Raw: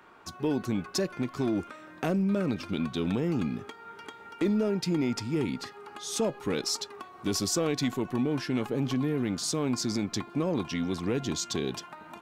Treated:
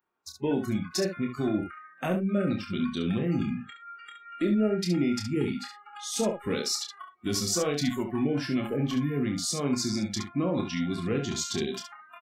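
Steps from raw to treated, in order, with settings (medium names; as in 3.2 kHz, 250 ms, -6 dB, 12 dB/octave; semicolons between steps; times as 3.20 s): spectral noise reduction 29 dB; early reflections 28 ms -5.5 dB, 69 ms -7.5 dB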